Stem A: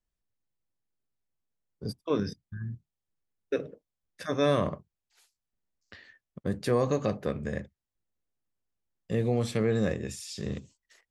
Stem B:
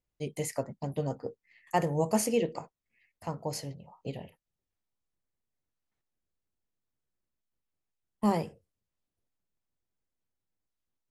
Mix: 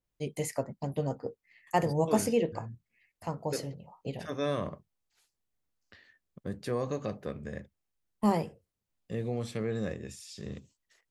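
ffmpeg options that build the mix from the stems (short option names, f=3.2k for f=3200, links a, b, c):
-filter_complex "[0:a]volume=-6.5dB[a];[1:a]adynamicequalizer=threshold=0.00355:dfrequency=2700:dqfactor=0.7:tfrequency=2700:tqfactor=0.7:attack=5:release=100:ratio=0.375:range=3:mode=cutabove:tftype=highshelf,volume=0.5dB[b];[a][b]amix=inputs=2:normalize=0"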